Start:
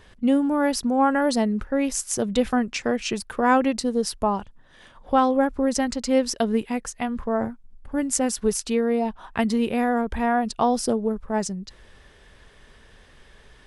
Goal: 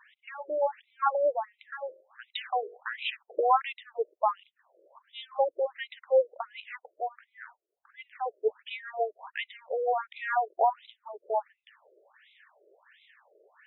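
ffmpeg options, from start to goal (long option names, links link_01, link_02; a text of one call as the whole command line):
ffmpeg -i in.wav -filter_complex "[0:a]asettb=1/sr,asplit=3[link_01][link_02][link_03];[link_01]atrim=end=1.754[link_04];[link_02]atrim=start=1.75:end=2.78,asetpts=PTS-STARTPTS,afade=type=in:duration=0.004:curve=qsin,afade=type=out:start_time=1.026:duration=0.004:curve=qsin,bandreject=frequency=48.14:width_type=h:width=4,bandreject=frequency=96.28:width_type=h:width=4,bandreject=frequency=144.42:width_type=h:width=4,bandreject=frequency=192.56:width_type=h:width=4,bandreject=frequency=240.7:width_type=h:width=4,bandreject=frequency=288.84:width_type=h:width=4,bandreject=frequency=336.98:width_type=h:width=4,bandreject=frequency=385.12:width_type=h:width=4,bandreject=frequency=433.26:width_type=h:width=4,bandreject=frequency=481.4:width_type=h:width=4,bandreject=frequency=529.54:width_type=h:width=4,bandreject=frequency=577.68:width_type=h:width=4,bandreject=frequency=625.82:width_type=h:width=4,bandreject=frequency=673.96:width_type=h:width=4,bandreject=frequency=722.1:width_type=h:width=4,bandreject=frequency=770.24:width_type=h:width=4,bandreject=frequency=818.38:width_type=h:width=4,bandreject=frequency=866.52:width_type=h:width=4,bandreject=frequency=914.66:width_type=h:width=4,bandreject=frequency=962.8:width_type=h:width=4,bandreject=frequency=1010.94:width_type=h:width=4,bandreject=frequency=1059.08:width_type=h:width=4,bandreject=frequency=1107.22:width_type=h:width=4,bandreject=frequency=1155.36:width_type=h:width=4,bandreject=frequency=1203.5:width_type=h:width=4,bandreject=frequency=1251.64:width_type=h:width=4,bandreject=frequency=1299.78:width_type=h:width=4,bandreject=frequency=1347.92:width_type=h:width=4,bandreject=frequency=1396.06:width_type=h:width=4,bandreject=frequency=1444.2:width_type=h:width=4,bandreject=frequency=1492.34:width_type=h:width=4[link_05];[link_03]atrim=start=2.776[link_06];[link_04][link_05]acrossfade=duration=0.004:curve1=hsin:curve2=qsin[link_07];[link_07][link_06]acrossfade=duration=0.004:curve1=qsin:curve2=hsin,afftfilt=real='re*between(b*sr/1024,450*pow(2900/450,0.5+0.5*sin(2*PI*1.4*pts/sr))/1.41,450*pow(2900/450,0.5+0.5*sin(2*PI*1.4*pts/sr))*1.41)':imag='im*between(b*sr/1024,450*pow(2900/450,0.5+0.5*sin(2*PI*1.4*pts/sr))/1.41,450*pow(2900/450,0.5+0.5*sin(2*PI*1.4*pts/sr))*1.41)':win_size=1024:overlap=0.75" out.wav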